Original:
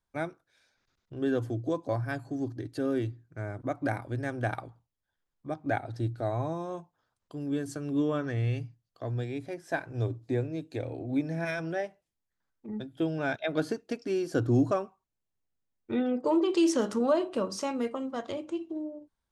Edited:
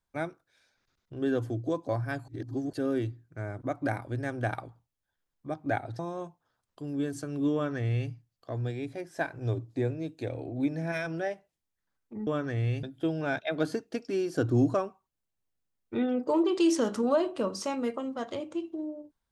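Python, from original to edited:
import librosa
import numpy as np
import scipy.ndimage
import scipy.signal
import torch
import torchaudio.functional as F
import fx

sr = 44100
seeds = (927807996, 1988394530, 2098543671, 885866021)

y = fx.edit(x, sr, fx.reverse_span(start_s=2.28, length_s=0.45),
    fx.cut(start_s=5.99, length_s=0.53),
    fx.duplicate(start_s=8.07, length_s=0.56, to_s=12.8), tone=tone)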